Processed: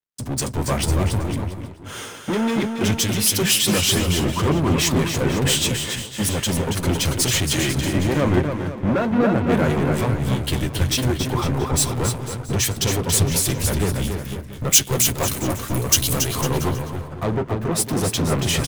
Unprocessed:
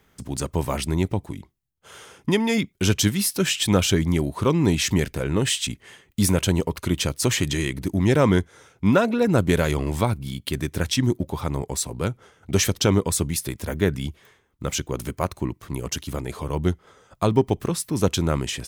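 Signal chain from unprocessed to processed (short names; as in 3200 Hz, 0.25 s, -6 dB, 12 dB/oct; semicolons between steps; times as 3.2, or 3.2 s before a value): compressor 3:1, threshold -34 dBFS, peak gain reduction 16 dB; flange 0.61 Hz, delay 7.4 ms, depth 2.2 ms, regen -42%; sample leveller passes 5; 14.02–16.2 high shelf 7900 Hz +10.5 dB; bouncing-ball echo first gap 0.28 s, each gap 0.8×, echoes 5; three-band expander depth 100%; gain +3.5 dB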